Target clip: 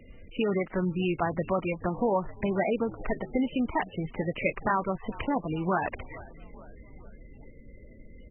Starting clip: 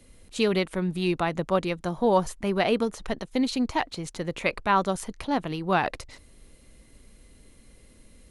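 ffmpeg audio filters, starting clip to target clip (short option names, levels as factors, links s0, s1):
-filter_complex "[0:a]acompressor=threshold=0.0251:ratio=2.5,asplit=6[s0][s1][s2][s3][s4][s5];[s1]adelay=428,afreqshift=-76,volume=0.1[s6];[s2]adelay=856,afreqshift=-152,volume=0.0603[s7];[s3]adelay=1284,afreqshift=-228,volume=0.0359[s8];[s4]adelay=1712,afreqshift=-304,volume=0.0216[s9];[s5]adelay=2140,afreqshift=-380,volume=0.013[s10];[s0][s6][s7][s8][s9][s10]amix=inputs=6:normalize=0,volume=1.78" -ar 22050 -c:a libmp3lame -b:a 8k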